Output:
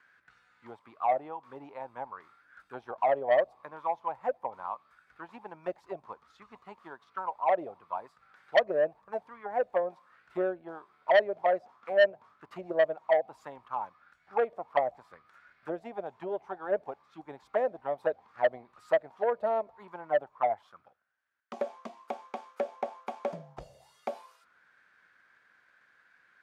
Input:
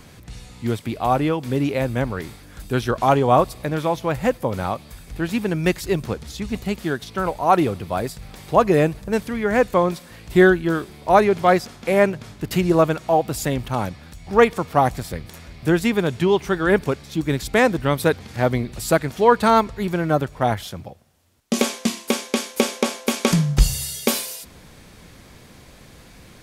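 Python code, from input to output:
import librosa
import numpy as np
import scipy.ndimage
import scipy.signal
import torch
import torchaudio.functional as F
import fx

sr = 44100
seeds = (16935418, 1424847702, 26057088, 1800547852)

y = fx.transient(x, sr, attack_db=4, sustain_db=-1)
y = fx.auto_wah(y, sr, base_hz=600.0, top_hz=1600.0, q=8.3, full_db=-12.0, direction='down')
y = fx.transformer_sat(y, sr, knee_hz=1500.0)
y = y * 10.0 ** (-1.5 / 20.0)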